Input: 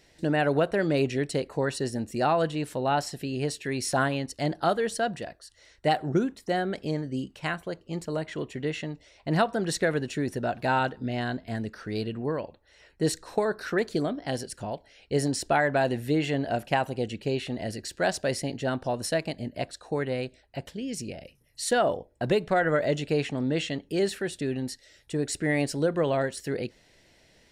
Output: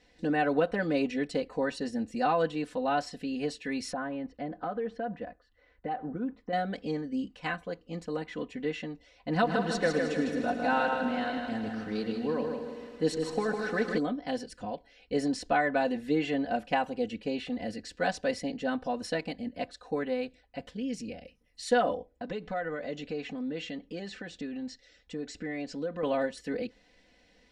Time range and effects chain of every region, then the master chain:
3.92–6.53 s: low-pass 1.7 kHz + compression 4:1, threshold -28 dBFS
9.31–13.98 s: feedback delay 155 ms, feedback 38%, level -5 dB + bit-crushed delay 109 ms, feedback 80%, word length 8-bit, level -12 dB
22.12–26.03 s: compression 2:1, threshold -34 dBFS + steep low-pass 7.8 kHz 48 dB/octave
whole clip: Bessel low-pass 4.6 kHz, order 2; comb 4 ms, depth 100%; trim -5.5 dB

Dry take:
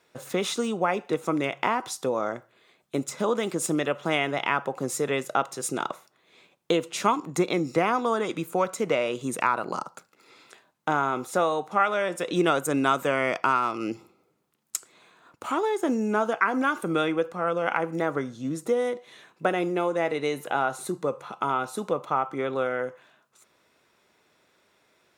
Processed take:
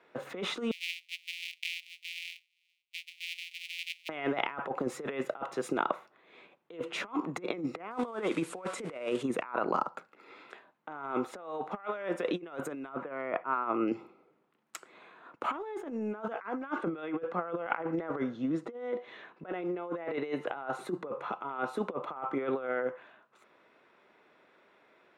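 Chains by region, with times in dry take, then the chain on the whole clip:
0.71–4.09 s: sorted samples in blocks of 256 samples + steep high-pass 2.3 kHz 72 dB/octave
7.91–9.23 s: zero-crossing glitches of -27.5 dBFS + steep low-pass 11 kHz 48 dB/octave + peaking EQ 8.2 kHz +7 dB 0.36 oct
12.89–13.88 s: low-pass 1.8 kHz + slow attack 223 ms
16.75–20.47 s: low-pass 6.2 kHz + band-stop 2.4 kHz, Q 29
whole clip: three-band isolator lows -14 dB, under 190 Hz, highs -22 dB, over 3 kHz; compressor with a negative ratio -31 dBFS, ratio -0.5; trim -2 dB

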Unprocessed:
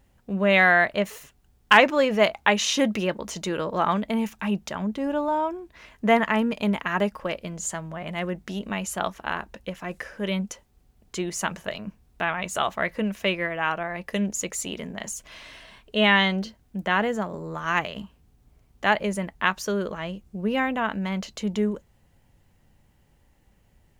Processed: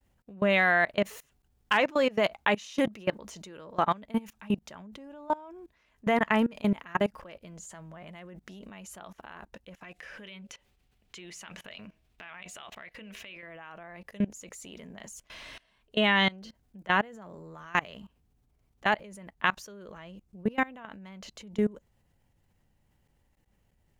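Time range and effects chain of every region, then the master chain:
9.83–13.43 s: peaking EQ 2.7 kHz +12 dB 1.7 oct + compression 2.5:1, threshold -36 dBFS + de-hum 79.86 Hz, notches 9
whole clip: expander -57 dBFS; level held to a coarse grid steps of 23 dB

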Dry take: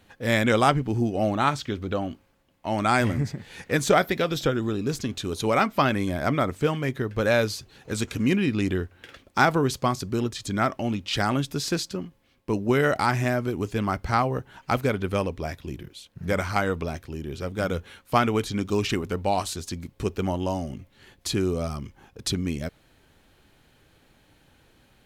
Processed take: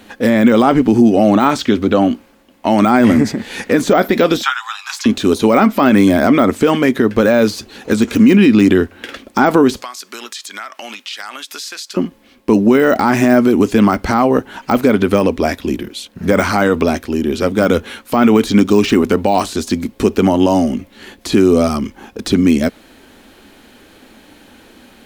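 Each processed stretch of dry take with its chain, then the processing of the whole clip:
4.42–5.06 s: steep high-pass 830 Hz 72 dB/octave + treble shelf 9.9 kHz -8.5 dB + doubling 14 ms -12 dB
9.82–11.97 s: high-pass 1.3 kHz + compression, threshold -41 dBFS
whole clip: de-esser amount 90%; resonant low shelf 180 Hz -7 dB, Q 3; loudness maximiser +17 dB; trim -1 dB

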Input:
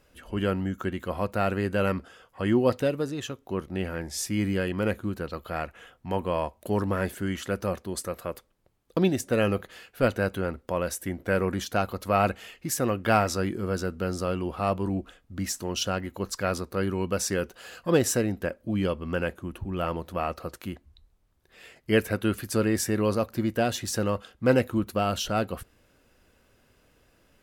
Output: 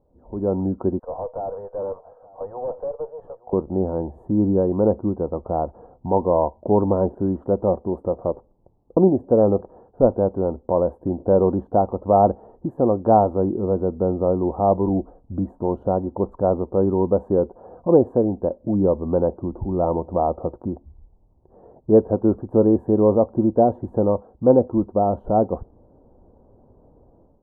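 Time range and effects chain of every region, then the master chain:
0.99–3.53 s: rippled Chebyshev high-pass 460 Hz, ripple 3 dB + valve stage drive 35 dB, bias 0.4 + delay 869 ms -21 dB
whole clip: elliptic low-pass 900 Hz, stop band 60 dB; dynamic bell 120 Hz, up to -7 dB, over -42 dBFS, Q 0.72; level rider gain up to 12 dB

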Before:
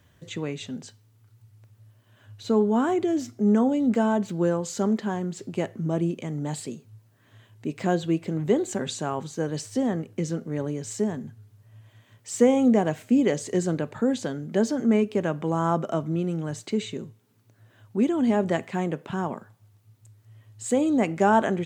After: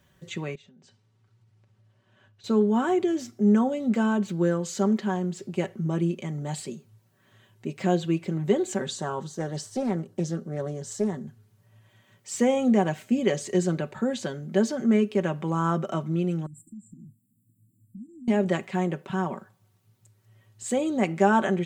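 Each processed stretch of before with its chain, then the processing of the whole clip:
0.55–2.44 s: distance through air 88 m + compression 16:1, threshold -50 dBFS
8.86–11.27 s: peaking EQ 2.4 kHz -12 dB 0.49 oct + loudspeaker Doppler distortion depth 0.23 ms
16.46–18.28 s: compression 4:1, threshold -40 dBFS + brick-wall FIR band-stop 330–7100 Hz
whole clip: comb 5.3 ms, depth 57%; dynamic bell 2.7 kHz, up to +3 dB, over -42 dBFS, Q 0.8; trim -2.5 dB

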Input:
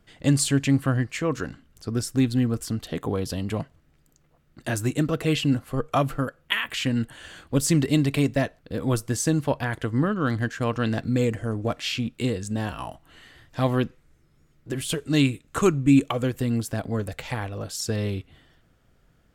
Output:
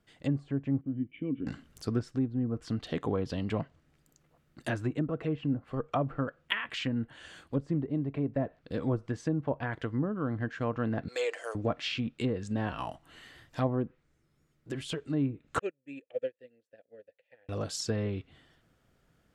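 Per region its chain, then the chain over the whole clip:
0.81–1.47 s: cascade formant filter i + treble shelf 2.8 kHz -11.5 dB
11.08–11.55 s: inverse Chebyshev high-pass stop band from 240 Hz + treble shelf 4.1 kHz +10.5 dB
15.59–17.49 s: vowel filter e + upward expansion 2.5:1, over -48 dBFS
whole clip: low-pass that closes with the level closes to 810 Hz, closed at -18.5 dBFS; bass shelf 61 Hz -10 dB; gain riding 0.5 s; trim -5.5 dB

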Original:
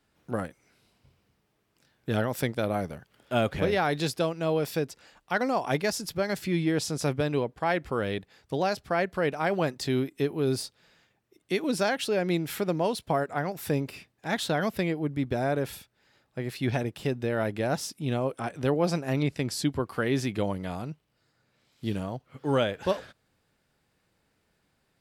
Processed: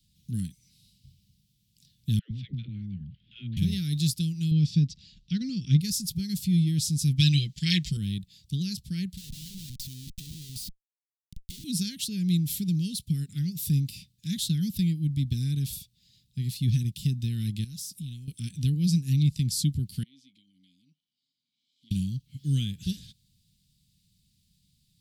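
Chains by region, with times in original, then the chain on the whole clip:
2.19–3.57 s: low-pass 2.9 kHz 24 dB/octave + compression 1.5:1, threshold -44 dBFS + phase dispersion lows, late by 116 ms, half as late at 500 Hz
4.51–5.81 s: low-pass 5.6 kHz 24 dB/octave + bass shelf 420 Hz +6.5 dB
7.18–7.97 s: high-order bell 3.5 kHz +15 dB 2.5 oct + comb 6 ms, depth 82%
9.17–11.64 s: bass shelf 430 Hz -6 dB + compression 2.5:1, threshold -40 dBFS + Schmitt trigger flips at -51 dBFS
17.64–18.28 s: treble shelf 6 kHz +7 dB + compression, threshold -39 dBFS
20.03–21.91 s: tone controls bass -12 dB, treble +10 dB + compression 2.5:1, threshold -50 dBFS + vowel filter i
whole clip: Chebyshev band-stop 180–3600 Hz, order 3; dynamic bell 3.6 kHz, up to -6 dB, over -51 dBFS, Q 0.73; trim +8 dB

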